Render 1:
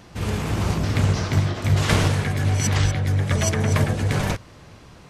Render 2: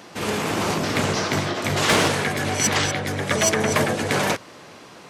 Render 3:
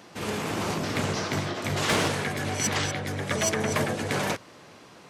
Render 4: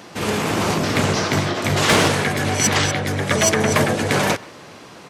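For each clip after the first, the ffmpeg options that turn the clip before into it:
-af "highpass=270,volume=17dB,asoftclip=hard,volume=-17dB,volume=6dB"
-af "equalizer=f=81:t=o:w=2.7:g=3,volume=-6.5dB"
-filter_complex "[0:a]asplit=2[a][b];[b]adelay=130,highpass=300,lowpass=3.4k,asoftclip=type=hard:threshold=-24.5dB,volume=-20dB[c];[a][c]amix=inputs=2:normalize=0,volume=9dB"

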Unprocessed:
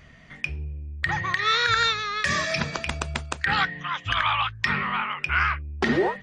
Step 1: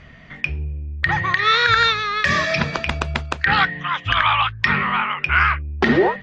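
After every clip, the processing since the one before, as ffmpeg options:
-af "lowpass=4.2k,volume=6.5dB"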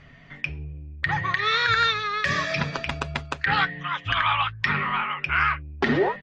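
-af "aecho=1:1:7.2:0.4,volume=-6dB"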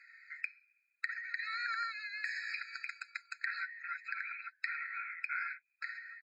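-af "acompressor=threshold=-31dB:ratio=6,afftfilt=real='re*eq(mod(floor(b*sr/1024/1300),2),1)':imag='im*eq(mod(floor(b*sr/1024/1300),2),1)':win_size=1024:overlap=0.75,volume=-3dB"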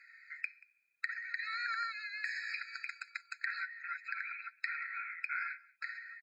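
-af "aecho=1:1:183:0.0708"

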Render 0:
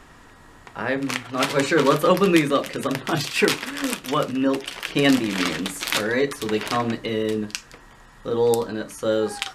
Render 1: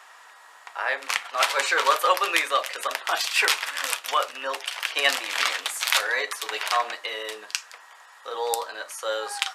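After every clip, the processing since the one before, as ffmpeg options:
-af "highpass=f=680:w=0.5412,highpass=f=680:w=1.3066,volume=2dB"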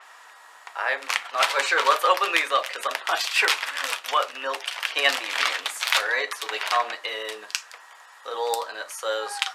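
-filter_complex "[0:a]acrossover=split=5200[a][b];[b]asoftclip=type=tanh:threshold=-14.5dB[c];[a][c]amix=inputs=2:normalize=0,adynamicequalizer=threshold=0.01:dfrequency=5500:dqfactor=0.7:tfrequency=5500:tqfactor=0.7:attack=5:release=100:ratio=0.375:range=2.5:mode=cutabove:tftype=highshelf,volume=1dB"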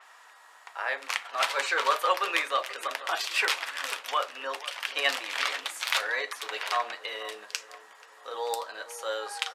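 -filter_complex "[0:a]asplit=2[a][b];[b]adelay=483,lowpass=f=1.2k:p=1,volume=-14.5dB,asplit=2[c][d];[d]adelay=483,lowpass=f=1.2k:p=1,volume=0.5,asplit=2[e][f];[f]adelay=483,lowpass=f=1.2k:p=1,volume=0.5,asplit=2[g][h];[h]adelay=483,lowpass=f=1.2k:p=1,volume=0.5,asplit=2[i][j];[j]adelay=483,lowpass=f=1.2k:p=1,volume=0.5[k];[a][c][e][g][i][k]amix=inputs=6:normalize=0,volume=-5.5dB"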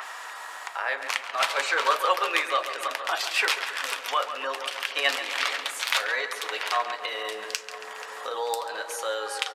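-filter_complex "[0:a]asplit=2[a][b];[b]adelay=138,lowpass=f=3.2k:p=1,volume=-10dB,asplit=2[c][d];[d]adelay=138,lowpass=f=3.2k:p=1,volume=0.51,asplit=2[e][f];[f]adelay=138,lowpass=f=3.2k:p=1,volume=0.51,asplit=2[g][h];[h]adelay=138,lowpass=f=3.2k:p=1,volume=0.51,asplit=2[i][j];[j]adelay=138,lowpass=f=3.2k:p=1,volume=0.51,asplit=2[k][l];[l]adelay=138,lowpass=f=3.2k:p=1,volume=0.51[m];[a][c][e][g][i][k][m]amix=inputs=7:normalize=0,acompressor=mode=upward:threshold=-28dB:ratio=2.5,volume=2dB"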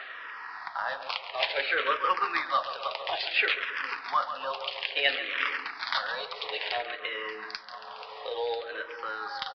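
-filter_complex "[0:a]aresample=11025,acrusher=bits=5:mode=log:mix=0:aa=0.000001,aresample=44100,asplit=2[a][b];[b]afreqshift=-0.58[c];[a][c]amix=inputs=2:normalize=1"

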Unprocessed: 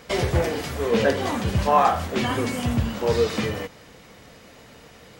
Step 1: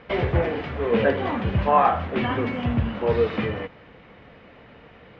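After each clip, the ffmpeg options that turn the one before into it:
-af "lowpass=f=2.9k:w=0.5412,lowpass=f=2.9k:w=1.3066"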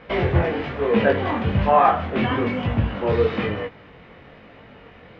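-af "flanger=delay=18.5:depth=4.4:speed=1.1,volume=5.5dB"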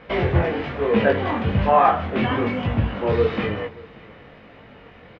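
-af "aecho=1:1:583:0.075"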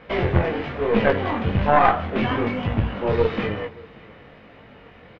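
-af "aeval=exprs='0.668*(cos(1*acos(clip(val(0)/0.668,-1,1)))-cos(1*PI/2))+0.299*(cos(2*acos(clip(val(0)/0.668,-1,1)))-cos(2*PI/2))':c=same,volume=-1dB"

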